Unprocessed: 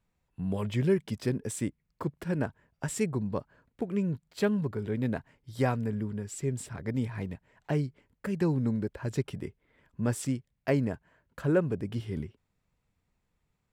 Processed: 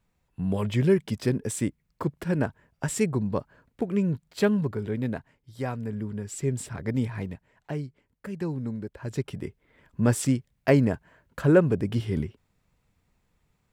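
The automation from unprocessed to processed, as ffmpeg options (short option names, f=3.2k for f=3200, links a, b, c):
-af "volume=24dB,afade=t=out:st=4.52:d=1.07:silence=0.334965,afade=t=in:st=5.59:d=0.88:silence=0.354813,afade=t=out:st=7.02:d=0.72:silence=0.421697,afade=t=in:st=8.89:d=1.15:silence=0.298538"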